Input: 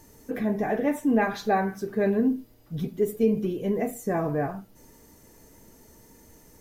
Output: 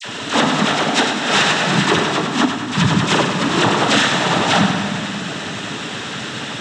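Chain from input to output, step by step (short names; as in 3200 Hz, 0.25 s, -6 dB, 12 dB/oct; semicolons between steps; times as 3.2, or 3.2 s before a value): sample sorter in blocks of 32 samples; notches 50/100/150/200 Hz; negative-ratio compressor -36 dBFS, ratio -1; small resonant body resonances 840/2700 Hz, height 10 dB, ringing for 25 ms; dispersion lows, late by 48 ms, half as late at 1600 Hz; noise vocoder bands 12; thinning echo 99 ms, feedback 56%, level -7 dB; reverb RT60 2.6 s, pre-delay 4 ms, DRR 8.5 dB; maximiser +20.5 dB; gain -3 dB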